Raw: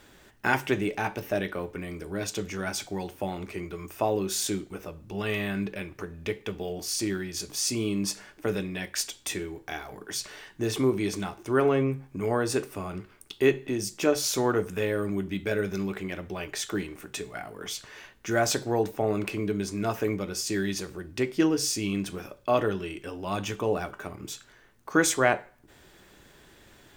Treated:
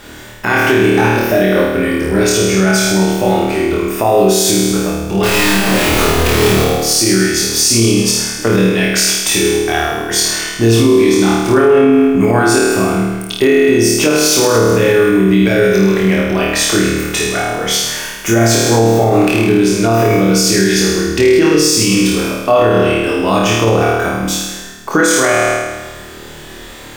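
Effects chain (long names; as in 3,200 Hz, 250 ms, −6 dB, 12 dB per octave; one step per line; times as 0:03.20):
0:05.23–0:06.62: sign of each sample alone
0:17.80–0:18.29: high shelf with overshoot 7,100 Hz +11.5 dB, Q 1.5
in parallel at −3 dB: downward compressor, threshold −34 dBFS, peak gain reduction 17 dB
on the sum: flutter between parallel walls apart 4.5 metres, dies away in 1.2 s
boost into a limiter +13 dB
level −1 dB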